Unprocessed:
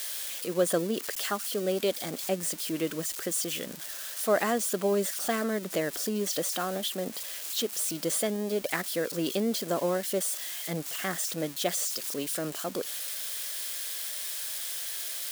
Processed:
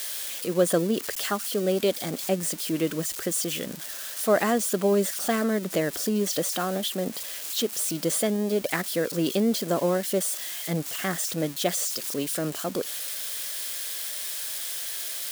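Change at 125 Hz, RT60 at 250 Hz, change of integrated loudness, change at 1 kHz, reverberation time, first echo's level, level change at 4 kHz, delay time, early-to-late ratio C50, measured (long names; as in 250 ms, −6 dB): +6.5 dB, no reverb audible, +3.5 dB, +3.0 dB, no reverb audible, no echo audible, +2.5 dB, no echo audible, no reverb audible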